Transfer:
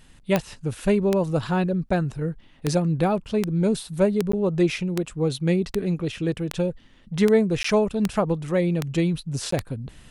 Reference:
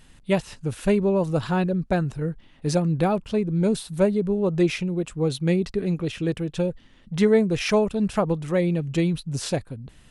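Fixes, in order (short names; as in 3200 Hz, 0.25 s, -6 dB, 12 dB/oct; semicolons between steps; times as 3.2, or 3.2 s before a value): de-click; interpolate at 1.89/4.32/7.63/9.51, 14 ms; gain correction -4.5 dB, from 9.58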